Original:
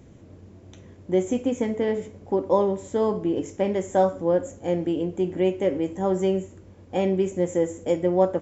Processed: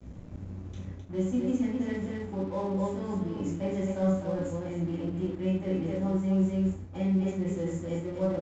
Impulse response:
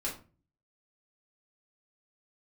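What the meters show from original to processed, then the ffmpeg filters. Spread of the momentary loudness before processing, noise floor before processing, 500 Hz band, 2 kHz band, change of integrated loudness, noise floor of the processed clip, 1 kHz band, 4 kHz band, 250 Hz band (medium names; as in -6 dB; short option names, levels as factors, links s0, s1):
5 LU, -49 dBFS, -10.5 dB, -6.5 dB, -6.0 dB, -44 dBFS, -12.0 dB, no reading, -2.0 dB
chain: -filter_complex "[0:a]lowshelf=f=340:g=10,aecho=1:1:63|260:0.376|0.596,areverse,acompressor=threshold=0.0631:ratio=6,areverse,equalizer=f=430:w=1.1:g=-8.5[s0];[1:a]atrim=start_sample=2205,afade=t=out:st=0.16:d=0.01,atrim=end_sample=7497,asetrate=42336,aresample=44100[s1];[s0][s1]afir=irnorm=-1:irlink=0,aresample=16000,aeval=exprs='sgn(val(0))*max(abs(val(0))-0.00531,0)':c=same,aresample=44100,volume=0.668"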